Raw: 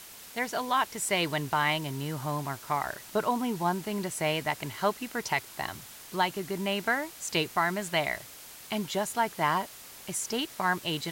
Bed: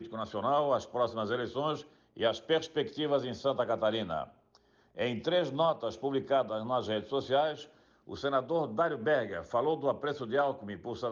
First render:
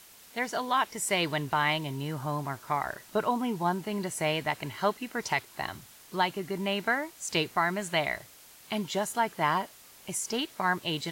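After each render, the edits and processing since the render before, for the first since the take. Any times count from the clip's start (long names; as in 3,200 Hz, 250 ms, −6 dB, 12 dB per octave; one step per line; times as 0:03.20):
noise reduction from a noise print 6 dB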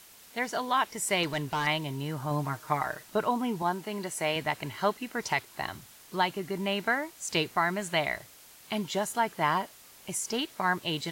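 0:01.23–0:01.67: gain into a clipping stage and back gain 25.5 dB
0:02.30–0:03.03: comb filter 6.5 ms, depth 61%
0:03.62–0:04.36: high-pass filter 260 Hz 6 dB per octave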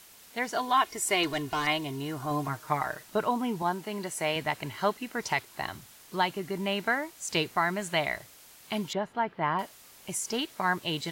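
0:00.56–0:02.48: comb filter 2.8 ms, depth 58%
0:08.93–0:09.59: high-frequency loss of the air 390 metres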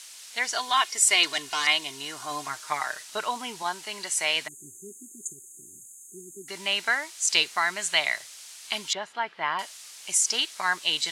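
0:04.47–0:06.48: time-frequency box erased 410–6,300 Hz
meter weighting curve ITU-R 468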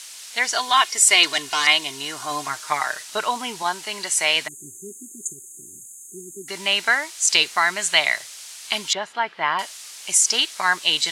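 level +6 dB
brickwall limiter −2 dBFS, peak gain reduction 2.5 dB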